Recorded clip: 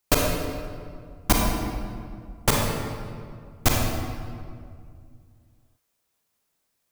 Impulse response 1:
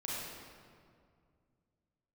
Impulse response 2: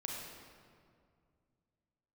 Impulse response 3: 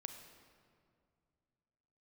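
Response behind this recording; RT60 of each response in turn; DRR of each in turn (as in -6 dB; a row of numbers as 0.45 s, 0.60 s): 2; 2.2 s, 2.2 s, 2.3 s; -7.0 dB, -2.0 dB, 6.0 dB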